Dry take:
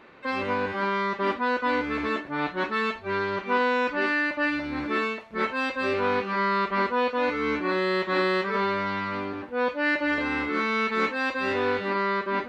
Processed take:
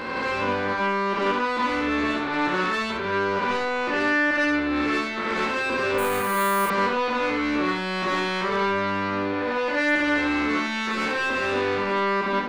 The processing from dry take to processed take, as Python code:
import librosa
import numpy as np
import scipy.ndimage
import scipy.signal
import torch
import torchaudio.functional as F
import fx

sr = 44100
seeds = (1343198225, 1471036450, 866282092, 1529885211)

y = fx.spec_swells(x, sr, rise_s=1.95)
y = fx.high_shelf(y, sr, hz=5300.0, db=-8.0, at=(3.63, 4.76))
y = 10.0 ** (-22.0 / 20.0) * np.tanh(y / 10.0 ** (-22.0 / 20.0))
y = fx.room_early_taps(y, sr, ms=(17, 71), db=(-8.5, -4.5))
y = fx.resample_bad(y, sr, factor=4, down='none', up='hold', at=(5.98, 6.7))
y = y * librosa.db_to_amplitude(1.5)